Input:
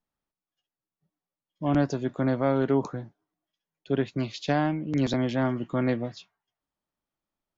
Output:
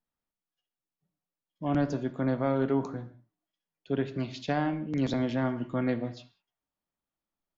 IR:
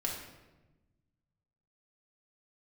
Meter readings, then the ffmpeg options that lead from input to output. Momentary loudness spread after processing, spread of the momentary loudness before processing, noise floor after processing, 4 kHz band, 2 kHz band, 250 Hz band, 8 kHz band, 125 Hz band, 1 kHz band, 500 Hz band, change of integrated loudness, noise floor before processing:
11 LU, 7 LU, under -85 dBFS, -4.5 dB, -3.5 dB, -2.5 dB, n/a, -3.5 dB, -3.0 dB, -3.5 dB, -3.0 dB, under -85 dBFS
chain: -filter_complex "[0:a]asplit=2[a][b];[1:a]atrim=start_sample=2205,afade=t=out:st=0.25:d=0.01,atrim=end_sample=11466,lowpass=5.1k[c];[b][c]afir=irnorm=-1:irlink=0,volume=-9.5dB[d];[a][d]amix=inputs=2:normalize=0,volume=-6dB"

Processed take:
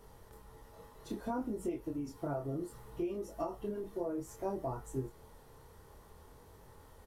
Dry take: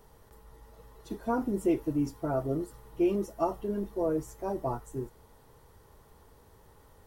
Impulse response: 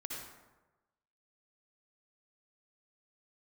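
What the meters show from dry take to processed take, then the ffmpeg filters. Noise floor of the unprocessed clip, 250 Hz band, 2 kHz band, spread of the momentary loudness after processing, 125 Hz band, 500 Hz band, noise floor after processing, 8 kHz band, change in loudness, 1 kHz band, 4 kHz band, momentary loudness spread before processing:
-59 dBFS, -8.5 dB, -7.0 dB, 20 LU, -6.0 dB, -7.5 dB, -58 dBFS, -3.5 dB, -8.0 dB, -7.0 dB, n/a, 11 LU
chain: -af "acompressor=threshold=-34dB:ratio=12,flanger=delay=22.5:depth=6.2:speed=0.61,aresample=32000,aresample=44100,volume=3.5dB"

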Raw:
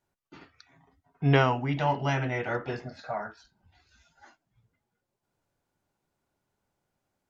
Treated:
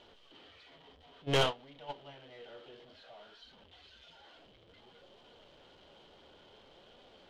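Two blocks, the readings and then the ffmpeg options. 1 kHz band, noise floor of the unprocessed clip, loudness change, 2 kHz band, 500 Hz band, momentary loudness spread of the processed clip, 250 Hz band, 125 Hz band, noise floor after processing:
-11.5 dB, -83 dBFS, -7.5 dB, -10.0 dB, -7.5 dB, 25 LU, -14.0 dB, -15.0 dB, -61 dBFS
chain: -af "aeval=exprs='val(0)+0.5*0.0596*sgn(val(0))':c=same,agate=range=-24dB:threshold=-18dB:ratio=16:detection=peak,equalizer=f=3.1k:t=o:w=0.23:g=15,flanger=delay=4:depth=9.8:regen=73:speed=0.57:shape=sinusoidal,equalizer=f=125:t=o:w=1:g=-6,equalizer=f=500:t=o:w=1:g=9,equalizer=f=4k:t=o:w=1:g=12,aeval=exprs='(tanh(12.6*val(0)+0.6)-tanh(0.6))/12.6':c=same,adynamicsmooth=sensitivity=1.5:basefreq=3.1k"

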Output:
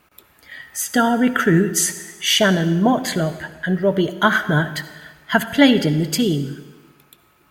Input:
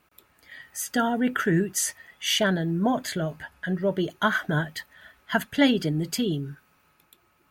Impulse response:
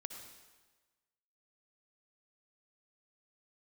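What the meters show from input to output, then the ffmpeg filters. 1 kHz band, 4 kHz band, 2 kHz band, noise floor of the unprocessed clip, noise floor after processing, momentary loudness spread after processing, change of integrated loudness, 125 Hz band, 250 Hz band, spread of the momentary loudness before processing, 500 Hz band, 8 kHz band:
+7.5 dB, +7.5 dB, +7.5 dB, -65 dBFS, -57 dBFS, 12 LU, +7.5 dB, +7.5 dB, +7.5 dB, 11 LU, +7.5 dB, +7.5 dB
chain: -filter_complex "[0:a]asplit=2[a][b];[1:a]atrim=start_sample=2205[c];[b][c]afir=irnorm=-1:irlink=0,volume=0.5dB[d];[a][d]amix=inputs=2:normalize=0,volume=3dB"

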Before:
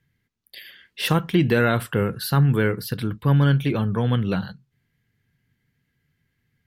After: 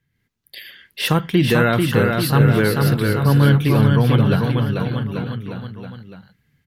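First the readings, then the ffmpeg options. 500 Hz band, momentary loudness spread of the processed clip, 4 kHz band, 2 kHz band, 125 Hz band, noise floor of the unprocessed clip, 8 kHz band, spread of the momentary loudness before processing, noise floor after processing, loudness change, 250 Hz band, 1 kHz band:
+5.0 dB, 14 LU, +5.5 dB, +5.0 dB, +5.5 dB, -74 dBFS, +5.5 dB, 9 LU, -71 dBFS, +4.5 dB, +5.5 dB, +5.5 dB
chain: -filter_complex "[0:a]dynaudnorm=f=110:g=3:m=7dB,asplit=2[a][b];[b]aecho=0:1:440|836|1192|1513|1802:0.631|0.398|0.251|0.158|0.1[c];[a][c]amix=inputs=2:normalize=0,volume=-2.5dB"

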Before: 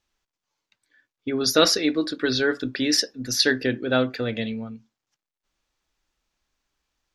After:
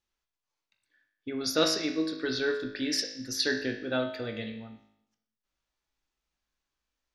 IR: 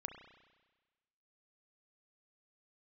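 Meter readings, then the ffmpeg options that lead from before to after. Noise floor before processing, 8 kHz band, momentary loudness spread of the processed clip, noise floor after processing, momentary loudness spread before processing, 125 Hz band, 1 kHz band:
under -85 dBFS, -8.5 dB, 13 LU, under -85 dBFS, 12 LU, -9.5 dB, -8.5 dB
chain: -filter_complex "[1:a]atrim=start_sample=2205,asetrate=74970,aresample=44100[a];[0:a][a]afir=irnorm=-1:irlink=0"

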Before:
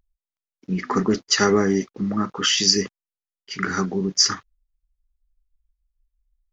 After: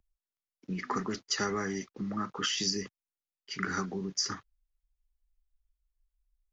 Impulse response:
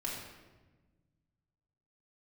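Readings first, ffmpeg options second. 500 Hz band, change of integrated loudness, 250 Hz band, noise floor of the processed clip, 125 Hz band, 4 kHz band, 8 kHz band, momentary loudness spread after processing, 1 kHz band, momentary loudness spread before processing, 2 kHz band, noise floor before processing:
-14.5 dB, -12.5 dB, -13.0 dB, under -85 dBFS, -12.0 dB, -13.0 dB, n/a, 11 LU, -9.0 dB, 12 LU, -9.5 dB, under -85 dBFS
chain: -filter_complex "[0:a]acrossover=split=150|860[a][b][c];[a]acompressor=threshold=-37dB:ratio=4[d];[b]acompressor=threshold=-29dB:ratio=4[e];[c]acompressor=threshold=-23dB:ratio=4[f];[d][e][f]amix=inputs=3:normalize=0,volume=-6.5dB"

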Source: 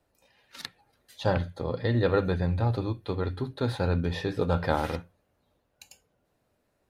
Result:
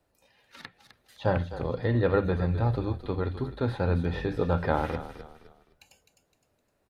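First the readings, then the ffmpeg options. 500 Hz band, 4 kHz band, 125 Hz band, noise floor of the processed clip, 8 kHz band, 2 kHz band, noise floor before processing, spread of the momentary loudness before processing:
0.0 dB, -6.0 dB, 0.0 dB, -73 dBFS, n/a, -0.5 dB, -74 dBFS, 11 LU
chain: -filter_complex "[0:a]asplit=4[a][b][c][d];[b]adelay=257,afreqshift=-35,volume=-13.5dB[e];[c]adelay=514,afreqshift=-70,volume=-22.9dB[f];[d]adelay=771,afreqshift=-105,volume=-32.2dB[g];[a][e][f][g]amix=inputs=4:normalize=0,acrossover=split=3000[h][i];[i]acompressor=threshold=-55dB:ratio=4:attack=1:release=60[j];[h][j]amix=inputs=2:normalize=0"

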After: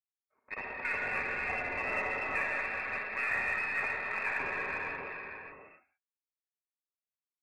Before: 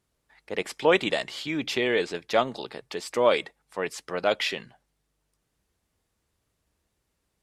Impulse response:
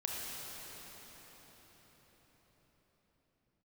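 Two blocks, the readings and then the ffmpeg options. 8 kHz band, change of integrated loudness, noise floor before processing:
under -15 dB, -6.5 dB, -77 dBFS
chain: -filter_complex "[0:a]highpass=f=240:p=1,bandreject=f=460:w=12,agate=range=-33dB:threshold=-48dB:ratio=3:detection=peak,lowshelf=f=440:g=-7,aecho=1:1:5.7:0.36,alimiter=limit=-17dB:level=0:latency=1:release=29,acompressor=threshold=-34dB:ratio=2,aeval=exprs='val(0)*sin(2*PI*340*n/s)':c=same,lowpass=f=2.3k:t=q:w=0.5098,lowpass=f=2.3k:t=q:w=0.6013,lowpass=f=2.3k:t=q:w=0.9,lowpass=f=2.3k:t=q:w=2.563,afreqshift=-2700,aecho=1:1:60|585:0.282|0.447[a];[1:a]atrim=start_sample=2205,afade=t=out:st=0.42:d=0.01,atrim=end_sample=18963,asetrate=26019,aresample=44100[b];[a][b]afir=irnorm=-1:irlink=0,aeval=exprs='0.1*(cos(1*acos(clip(val(0)/0.1,-1,1)))-cos(1*PI/2))+0.002*(cos(8*acos(clip(val(0)/0.1,-1,1)))-cos(8*PI/2))':c=same"

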